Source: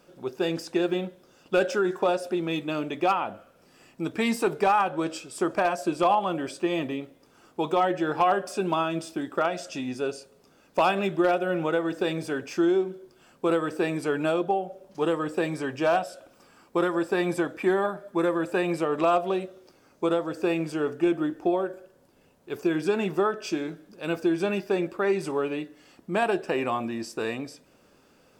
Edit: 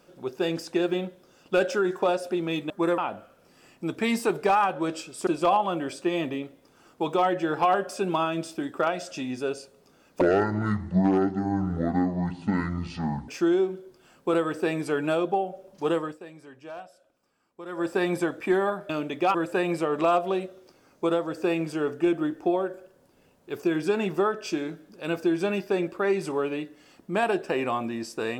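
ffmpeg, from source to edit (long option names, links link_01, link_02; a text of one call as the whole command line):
ffmpeg -i in.wav -filter_complex "[0:a]asplit=10[link_01][link_02][link_03][link_04][link_05][link_06][link_07][link_08][link_09][link_10];[link_01]atrim=end=2.702[link_11];[link_02]atrim=start=18.058:end=18.342[link_12];[link_03]atrim=start=3.148:end=5.442[link_13];[link_04]atrim=start=5.848:end=10.794[link_14];[link_05]atrim=start=10.79:end=12.45,asetpts=PTS-STARTPTS,asetrate=23814,aresample=44100[link_15];[link_06]atrim=start=12.446:end=15.35,asetpts=PTS-STARTPTS,afade=type=out:start_time=2.694:duration=0.21:silence=0.141254[link_16];[link_07]atrim=start=15.35:end=16.83,asetpts=PTS-STARTPTS,volume=-17dB[link_17];[link_08]atrim=start=16.83:end=18.062,asetpts=PTS-STARTPTS,afade=type=in:duration=0.21:silence=0.141254[link_18];[link_09]atrim=start=2.698:end=3.152[link_19];[link_10]atrim=start=18.338[link_20];[link_11][link_12]acrossfade=duration=0.004:curve1=hsin:curve2=hsin[link_21];[link_21][link_13]acrossfade=duration=0.004:curve1=hsin:curve2=hsin[link_22];[link_22][link_14]acrossfade=duration=0.004:curve1=hsin:curve2=hsin[link_23];[link_23][link_15]acrossfade=duration=0.004:curve1=hsin:curve2=hsin[link_24];[link_16][link_17][link_18]concat=n=3:v=0:a=1[link_25];[link_24][link_25]acrossfade=duration=0.004:curve1=hsin:curve2=hsin[link_26];[link_26][link_19]acrossfade=duration=0.004:curve1=hsin:curve2=hsin[link_27];[link_27][link_20]acrossfade=duration=0.004:curve1=hsin:curve2=hsin" out.wav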